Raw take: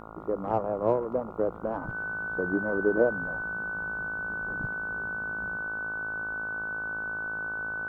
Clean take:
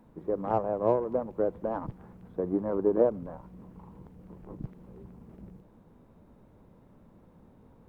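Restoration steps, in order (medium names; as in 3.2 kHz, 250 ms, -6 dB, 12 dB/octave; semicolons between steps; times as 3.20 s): de-hum 54.4 Hz, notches 26; band-stop 1.5 kHz, Q 30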